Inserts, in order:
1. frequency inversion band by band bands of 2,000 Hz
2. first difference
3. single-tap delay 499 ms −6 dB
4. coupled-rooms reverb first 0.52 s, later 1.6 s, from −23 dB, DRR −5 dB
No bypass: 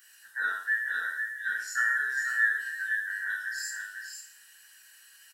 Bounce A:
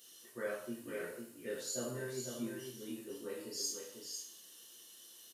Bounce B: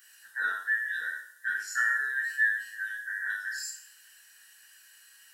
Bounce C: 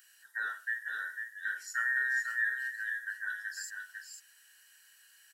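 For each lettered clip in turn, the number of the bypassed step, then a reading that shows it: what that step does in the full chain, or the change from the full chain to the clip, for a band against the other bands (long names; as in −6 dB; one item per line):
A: 1, 2 kHz band −24.5 dB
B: 3, change in momentary loudness spread −4 LU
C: 4, echo-to-direct ratio 6.0 dB to −6.0 dB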